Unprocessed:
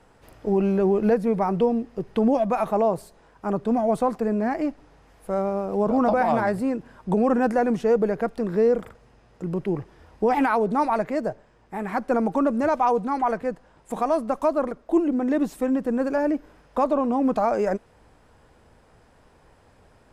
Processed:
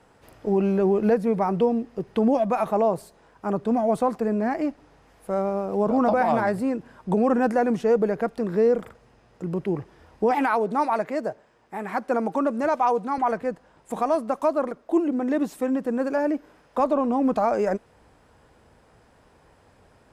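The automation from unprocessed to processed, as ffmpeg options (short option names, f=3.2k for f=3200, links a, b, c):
-af "asetnsamples=n=441:p=0,asendcmd='10.31 highpass f 280;13.18 highpass f 87;14.15 highpass f 180;16.8 highpass f 50',highpass=f=70:p=1"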